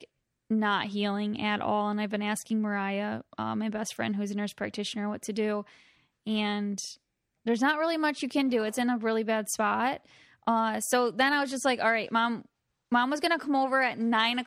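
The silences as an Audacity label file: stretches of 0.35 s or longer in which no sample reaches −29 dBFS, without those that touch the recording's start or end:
5.600000	6.270000	silence
6.860000	7.470000	silence
9.950000	10.470000	silence
12.350000	12.920000	silence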